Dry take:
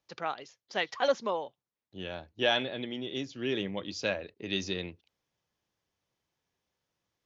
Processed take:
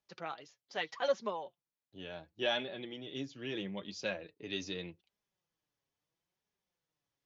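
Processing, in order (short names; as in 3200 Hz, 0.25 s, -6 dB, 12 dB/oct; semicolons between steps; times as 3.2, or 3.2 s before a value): flange 0.77 Hz, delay 4.7 ms, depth 2.7 ms, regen +36%; gain -2.5 dB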